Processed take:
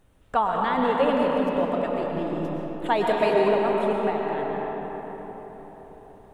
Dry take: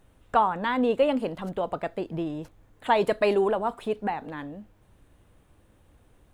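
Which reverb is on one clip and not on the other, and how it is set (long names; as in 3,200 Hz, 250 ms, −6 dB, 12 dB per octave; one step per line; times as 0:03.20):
comb and all-pass reverb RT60 5 s, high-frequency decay 0.45×, pre-delay 80 ms, DRR −2 dB
level −1.5 dB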